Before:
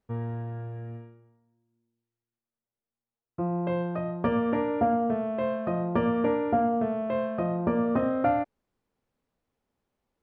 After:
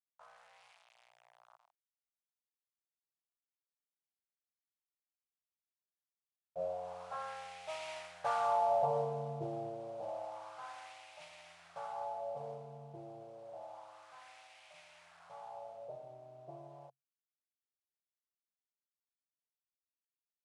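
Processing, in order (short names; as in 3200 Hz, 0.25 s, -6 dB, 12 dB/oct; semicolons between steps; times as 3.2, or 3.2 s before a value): Doppler pass-by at 4.05, 11 m/s, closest 5.2 m; tone controls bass -15 dB, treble -4 dB; notch 580 Hz, Q 12; comb 6.4 ms, depth 78%; modulation noise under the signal 14 dB; bit-crush 9-bit; EQ curve 190 Hz 0 dB, 270 Hz +10 dB, 530 Hz -29 dB, 910 Hz -2 dB, 1400 Hz +14 dB, 3600 Hz -2 dB, 5200 Hz +3 dB; speed mistake 15 ips tape played at 7.5 ips; wah 0.29 Hz 340–2300 Hz, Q 2.5; gain +2.5 dB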